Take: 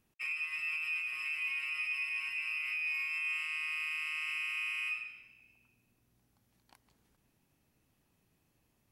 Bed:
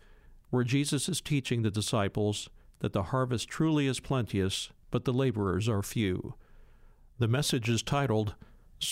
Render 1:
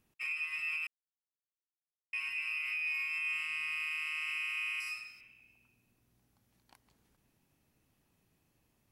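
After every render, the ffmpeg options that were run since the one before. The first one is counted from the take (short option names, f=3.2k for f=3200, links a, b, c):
-filter_complex "[0:a]asettb=1/sr,asplit=3[a][b][c];[a]atrim=end=3.074[d];[b]atrim=start=3.07:end=3.83,asetpts=PTS-STARTPTS,afade=t=in:d=0.004:c=qsin,afade=t=out:st=0.756:d=0.004:c=qsin,equalizer=f=160:w=1.5:g=9[e];[c]atrim=start=3.826[f];[d][e]acrossfade=d=0.004:c1=hsin:c2=qsin[g];[g][f]acrossfade=d=0.004:c1=qsin:c2=hsin,asettb=1/sr,asplit=3[h][i][j];[h]atrim=end=4.804[k];[i]atrim=start=4.8:end=5.21,asetpts=PTS-STARTPTS,afade=t=in:d=0.004:c=qsin,afade=t=out:st=0.406:d=0.004:c=qsin,highshelf=f=3.9k:t=q:w=3:g=7.5[l];[j]atrim=start=5.206[m];[k][l]acrossfade=d=0.004:c1=hsin:c2=qsin[n];[n][m]acrossfade=d=0.004:c1=qsin:c2=hsin,asplit=3[o][p][q];[o]atrim=end=0.87,asetpts=PTS-STARTPTS,afade=t=out:st=0.866:d=0.004:c=hsin[r];[p]atrim=start=0.87:end=2.13,asetpts=PTS-STARTPTS,volume=0[s];[q]atrim=start=2.13,asetpts=PTS-STARTPTS,afade=t=in:d=0.004:c=hsin[t];[r][s][t]concat=n=3:v=0:a=1"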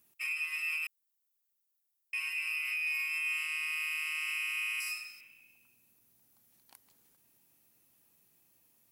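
-af "highpass=f=230:p=1,aemphasis=mode=production:type=50fm"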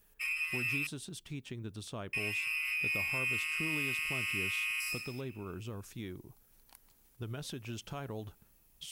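-filter_complex "[1:a]volume=-13.5dB[a];[0:a][a]amix=inputs=2:normalize=0"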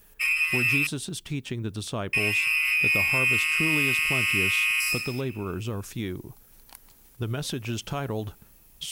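-af "volume=11dB"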